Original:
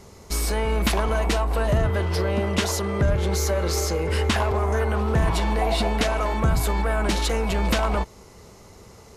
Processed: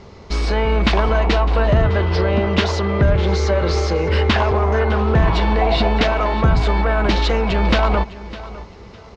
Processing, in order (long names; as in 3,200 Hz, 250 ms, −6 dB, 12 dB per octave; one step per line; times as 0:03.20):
low-pass filter 4,600 Hz 24 dB per octave
on a send: repeating echo 606 ms, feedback 25%, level −17 dB
on the sum: level +6 dB